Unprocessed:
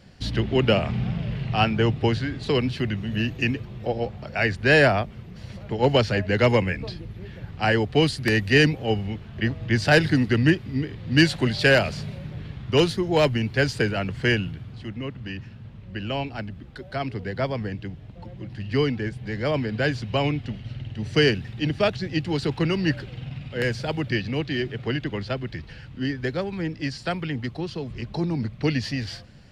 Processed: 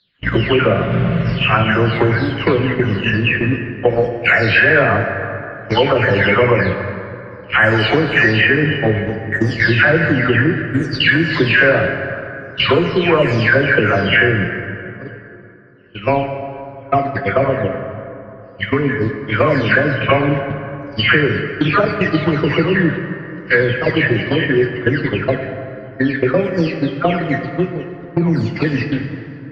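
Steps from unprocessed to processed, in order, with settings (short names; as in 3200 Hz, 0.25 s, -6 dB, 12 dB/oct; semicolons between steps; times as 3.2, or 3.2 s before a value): spectral delay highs early, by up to 0.475 s; gate -28 dBFS, range -41 dB; bell 810 Hz -12 dB 0.48 oct; compressor 6:1, threshold -33 dBFS, peak gain reduction 18 dB; LPF 1400 Hz 12 dB/oct; tilt shelf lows -8 dB, about 640 Hz; plate-style reverb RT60 2.9 s, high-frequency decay 0.5×, DRR 5 dB; maximiser +25.5 dB; gain -1 dB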